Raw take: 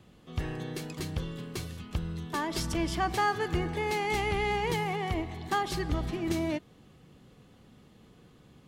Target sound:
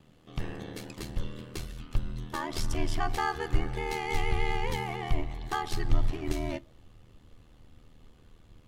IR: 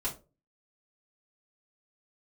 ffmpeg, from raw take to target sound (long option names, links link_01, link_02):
-filter_complex "[0:a]aeval=exprs='val(0)*sin(2*PI*39*n/s)':channel_layout=same,asubboost=boost=6.5:cutoff=71,asplit=2[link_01][link_02];[1:a]atrim=start_sample=2205[link_03];[link_02][link_03]afir=irnorm=-1:irlink=0,volume=-20.5dB[link_04];[link_01][link_04]amix=inputs=2:normalize=0"